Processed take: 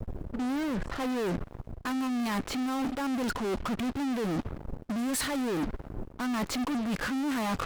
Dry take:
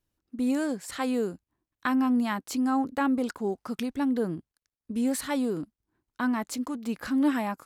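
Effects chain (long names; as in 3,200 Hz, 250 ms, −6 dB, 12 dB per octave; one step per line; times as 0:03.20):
fade in at the beginning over 1.73 s
background noise brown −57 dBFS
low-pass that shuts in the quiet parts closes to 510 Hz, open at −24 dBFS
in parallel at −9 dB: fuzz pedal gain 53 dB, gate −57 dBFS
on the sum: bit reduction 11 bits
reversed playback
downward compressor 12 to 1, threshold −29 dBFS, peak gain reduction 13.5 dB
reversed playback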